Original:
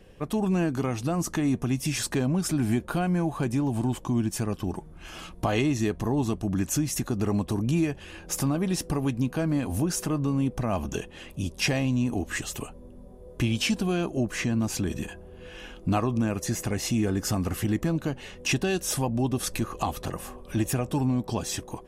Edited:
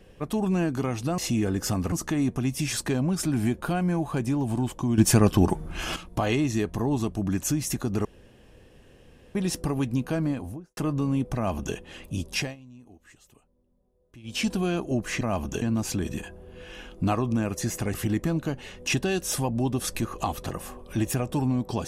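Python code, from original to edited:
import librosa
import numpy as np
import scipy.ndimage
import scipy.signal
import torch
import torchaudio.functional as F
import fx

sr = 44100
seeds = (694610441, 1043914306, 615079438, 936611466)

y = fx.studio_fade_out(x, sr, start_s=9.41, length_s=0.62)
y = fx.edit(y, sr, fx.clip_gain(start_s=4.24, length_s=0.98, db=10.5),
    fx.room_tone_fill(start_s=7.31, length_s=1.3),
    fx.duplicate(start_s=10.61, length_s=0.41, to_s=14.47),
    fx.fade_down_up(start_s=11.59, length_s=2.13, db=-23.0, fade_s=0.23),
    fx.move(start_s=16.79, length_s=0.74, to_s=1.18), tone=tone)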